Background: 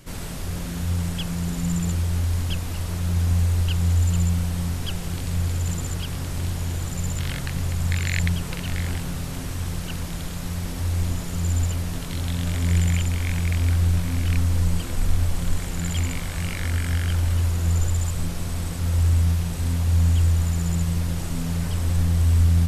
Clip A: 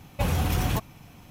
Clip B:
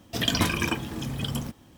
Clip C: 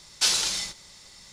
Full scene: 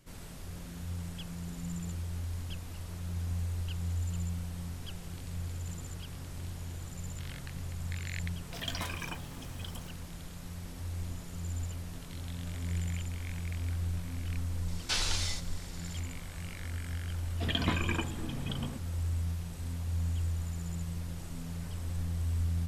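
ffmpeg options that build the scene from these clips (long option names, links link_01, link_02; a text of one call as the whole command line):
ffmpeg -i bed.wav -i cue0.wav -i cue1.wav -i cue2.wav -filter_complex "[2:a]asplit=2[link_01][link_02];[0:a]volume=-14dB[link_03];[link_01]lowshelf=frequency=470:width_type=q:width=1.5:gain=-6.5[link_04];[3:a]acrossover=split=3400[link_05][link_06];[link_06]acompressor=threshold=-30dB:ratio=4:attack=1:release=60[link_07];[link_05][link_07]amix=inputs=2:normalize=0[link_08];[link_02]lowpass=frequency=3800:width=0.5412,lowpass=frequency=3800:width=1.3066[link_09];[link_04]atrim=end=1.77,asetpts=PTS-STARTPTS,volume=-12.5dB,afade=type=in:duration=0.004:curve=hsin,afade=type=out:start_time=1.766:duration=0.004:curve=hsin,adelay=8400[link_10];[link_08]atrim=end=1.32,asetpts=PTS-STARTPTS,volume=-4dB,afade=type=in:duration=0.004:curve=hsin,afade=type=out:start_time=1.316:duration=0.004:curve=hsin,adelay=14680[link_11];[link_09]atrim=end=1.77,asetpts=PTS-STARTPTS,volume=-6.5dB,afade=type=in:duration=0.004:curve=hsin,afade=type=out:start_time=1.766:duration=0.004:curve=hsin,adelay=17270[link_12];[link_03][link_10][link_11][link_12]amix=inputs=4:normalize=0" out.wav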